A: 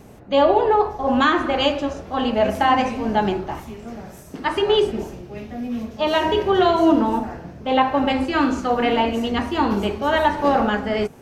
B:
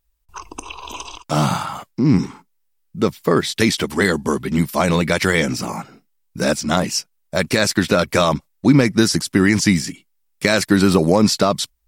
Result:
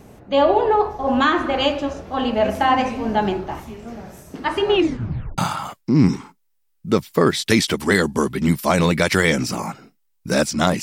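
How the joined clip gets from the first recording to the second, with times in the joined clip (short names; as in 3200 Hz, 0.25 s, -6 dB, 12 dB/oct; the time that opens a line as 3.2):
A
4.7 tape stop 0.68 s
5.38 switch to B from 1.48 s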